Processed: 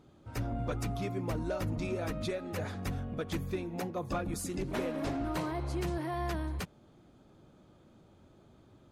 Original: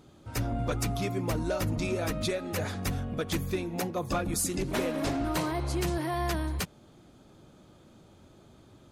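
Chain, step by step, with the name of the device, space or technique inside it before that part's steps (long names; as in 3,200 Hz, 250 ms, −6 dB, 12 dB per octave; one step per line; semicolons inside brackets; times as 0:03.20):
behind a face mask (high-shelf EQ 3,400 Hz −8 dB)
level −4 dB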